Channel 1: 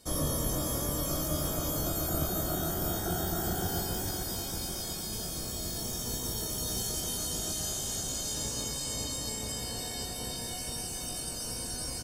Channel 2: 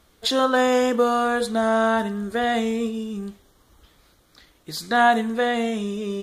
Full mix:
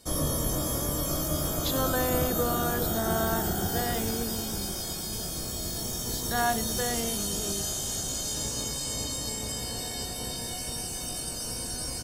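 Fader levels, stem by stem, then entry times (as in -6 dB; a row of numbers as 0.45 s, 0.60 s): +2.5 dB, -10.5 dB; 0.00 s, 1.40 s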